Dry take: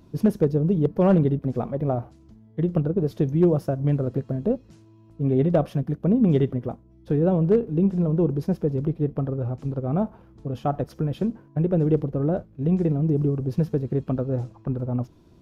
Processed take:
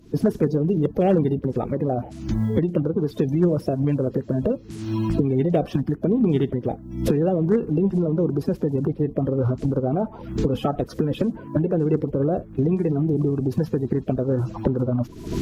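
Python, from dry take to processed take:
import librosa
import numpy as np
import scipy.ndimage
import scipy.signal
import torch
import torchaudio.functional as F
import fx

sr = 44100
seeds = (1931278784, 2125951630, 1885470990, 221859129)

y = fx.spec_quant(x, sr, step_db=30)
y = fx.recorder_agc(y, sr, target_db=-15.0, rise_db_per_s=70.0, max_gain_db=30)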